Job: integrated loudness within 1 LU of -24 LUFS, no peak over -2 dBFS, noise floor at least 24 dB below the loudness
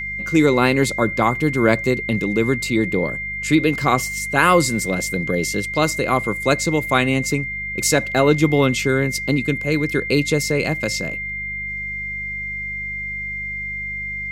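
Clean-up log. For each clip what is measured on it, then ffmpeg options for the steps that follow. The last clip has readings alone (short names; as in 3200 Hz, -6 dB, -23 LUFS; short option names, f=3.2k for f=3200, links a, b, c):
hum 50 Hz; harmonics up to 200 Hz; hum level -36 dBFS; steady tone 2100 Hz; tone level -25 dBFS; loudness -19.5 LUFS; peak -1.0 dBFS; loudness target -24.0 LUFS
-> -af "bandreject=f=50:t=h:w=4,bandreject=f=100:t=h:w=4,bandreject=f=150:t=h:w=4,bandreject=f=200:t=h:w=4"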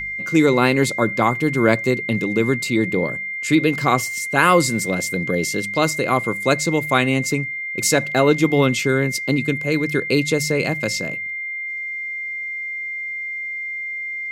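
hum none; steady tone 2100 Hz; tone level -25 dBFS
-> -af "bandreject=f=2.1k:w=30"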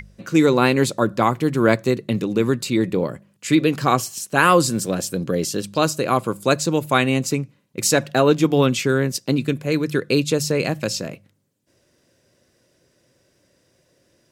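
steady tone none; loudness -20.0 LUFS; peak -2.0 dBFS; loudness target -24.0 LUFS
-> -af "volume=-4dB"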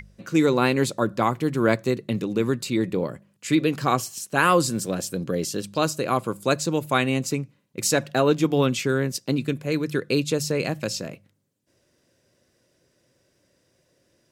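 loudness -24.0 LUFS; peak -6.0 dBFS; noise floor -68 dBFS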